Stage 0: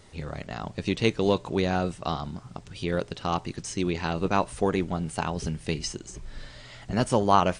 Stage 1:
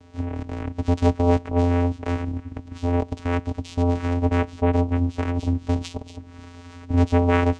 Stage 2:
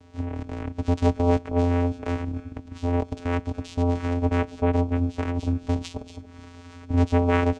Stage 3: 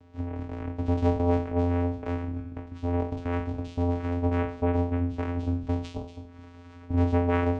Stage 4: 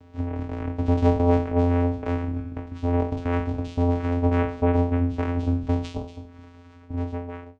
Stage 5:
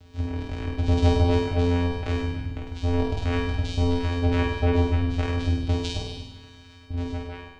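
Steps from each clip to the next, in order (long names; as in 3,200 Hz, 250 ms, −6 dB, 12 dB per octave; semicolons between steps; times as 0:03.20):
soft clipping −12 dBFS, distortion −18 dB; channel vocoder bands 4, square 87.2 Hz; level +7 dB
single-tap delay 282 ms −20.5 dB; level −2 dB
peak hold with a decay on every bin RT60 0.51 s; low-pass filter 2,200 Hz 6 dB per octave; level −3.5 dB
fade-out on the ending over 1.73 s; level +4.5 dB
octave-band graphic EQ 125/250/500/1,000/2,000/4,000 Hz −6/−11/−7/−10/−5/+4 dB; on a send: flutter between parallel walls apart 8.6 metres, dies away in 1.1 s; on the sum: level +7 dB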